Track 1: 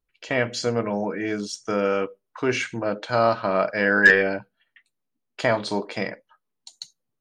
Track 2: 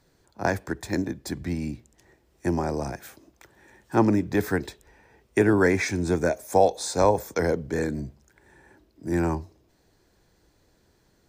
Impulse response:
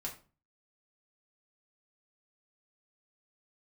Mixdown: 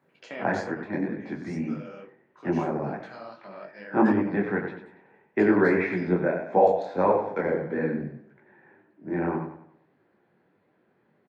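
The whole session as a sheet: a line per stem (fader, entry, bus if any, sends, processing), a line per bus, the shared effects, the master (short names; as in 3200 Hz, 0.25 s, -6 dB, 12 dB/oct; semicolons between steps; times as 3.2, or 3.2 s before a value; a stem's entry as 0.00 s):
-7.0 dB, 0.00 s, send -18 dB, no echo send, three-band squash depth 40%; auto duck -13 dB, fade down 1.00 s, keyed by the second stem
-0.5 dB, 0.00 s, send -4 dB, echo send -4.5 dB, LPF 2400 Hz 24 dB/oct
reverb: on, RT60 0.35 s, pre-delay 4 ms
echo: feedback echo 95 ms, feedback 40%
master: HPF 140 Hz 24 dB/oct; detuned doubles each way 58 cents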